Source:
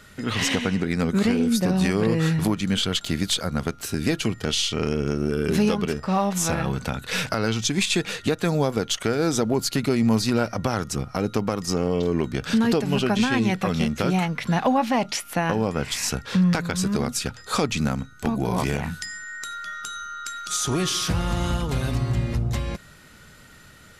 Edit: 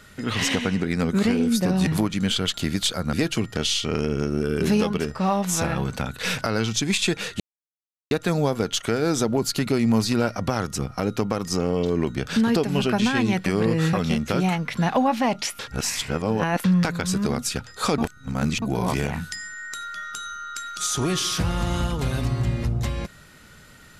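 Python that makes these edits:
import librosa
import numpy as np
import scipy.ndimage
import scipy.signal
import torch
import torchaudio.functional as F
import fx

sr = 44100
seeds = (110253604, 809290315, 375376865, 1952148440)

y = fx.edit(x, sr, fx.move(start_s=1.87, length_s=0.47, to_s=13.63),
    fx.cut(start_s=3.6, length_s=0.41),
    fx.insert_silence(at_s=8.28, length_s=0.71),
    fx.reverse_span(start_s=15.29, length_s=1.05),
    fx.reverse_span(start_s=17.68, length_s=0.64), tone=tone)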